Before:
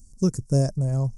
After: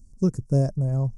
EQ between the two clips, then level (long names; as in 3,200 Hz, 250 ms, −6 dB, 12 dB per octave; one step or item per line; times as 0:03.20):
high-shelf EQ 2,400 Hz −11 dB
0.0 dB